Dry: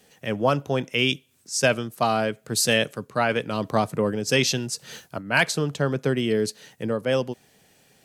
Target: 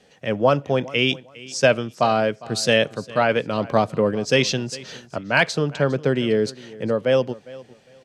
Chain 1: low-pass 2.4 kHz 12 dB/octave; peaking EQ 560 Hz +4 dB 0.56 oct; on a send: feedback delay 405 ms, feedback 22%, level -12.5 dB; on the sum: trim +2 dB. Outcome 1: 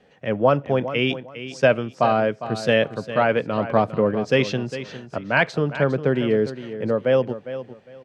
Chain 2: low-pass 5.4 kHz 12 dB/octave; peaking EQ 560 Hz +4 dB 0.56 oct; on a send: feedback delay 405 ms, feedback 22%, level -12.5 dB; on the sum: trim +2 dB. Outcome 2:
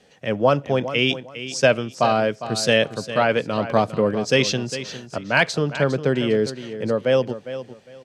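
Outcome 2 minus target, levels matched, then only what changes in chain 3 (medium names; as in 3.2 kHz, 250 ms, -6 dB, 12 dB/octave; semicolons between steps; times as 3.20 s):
echo-to-direct +7.5 dB
change: feedback delay 405 ms, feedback 22%, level -20 dB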